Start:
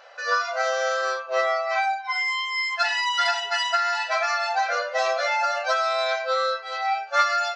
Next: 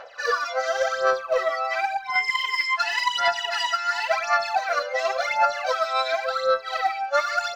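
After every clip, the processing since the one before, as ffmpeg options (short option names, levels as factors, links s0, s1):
-af "lowshelf=f=470:g=6,acompressor=threshold=0.0708:ratio=6,aphaser=in_gain=1:out_gain=1:delay=3.8:decay=0.72:speed=0.92:type=sinusoidal,volume=0.891"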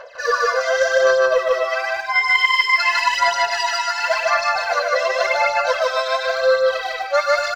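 -filter_complex "[0:a]bandreject=f=2300:w=27,aecho=1:1:1.9:0.66,asplit=2[s0][s1];[s1]aecho=0:1:151.6|250.7:0.891|0.355[s2];[s0][s2]amix=inputs=2:normalize=0,volume=1.19"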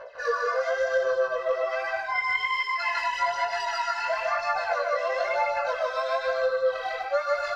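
-af "highshelf=f=2400:g=-11,acompressor=threshold=0.1:ratio=4,flanger=delay=17:depth=5.5:speed=1.1"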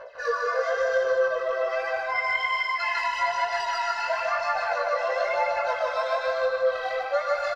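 -filter_complex "[0:a]asplit=2[s0][s1];[s1]adelay=303,lowpass=f=4700:p=1,volume=0.447,asplit=2[s2][s3];[s3]adelay=303,lowpass=f=4700:p=1,volume=0.39,asplit=2[s4][s5];[s5]adelay=303,lowpass=f=4700:p=1,volume=0.39,asplit=2[s6][s7];[s7]adelay=303,lowpass=f=4700:p=1,volume=0.39,asplit=2[s8][s9];[s9]adelay=303,lowpass=f=4700:p=1,volume=0.39[s10];[s0][s2][s4][s6][s8][s10]amix=inputs=6:normalize=0"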